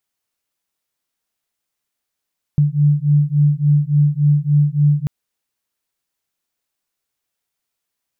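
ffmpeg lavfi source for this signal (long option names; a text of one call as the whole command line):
ffmpeg -f lavfi -i "aevalsrc='0.188*(sin(2*PI*145*t)+sin(2*PI*148.5*t))':duration=2.49:sample_rate=44100" out.wav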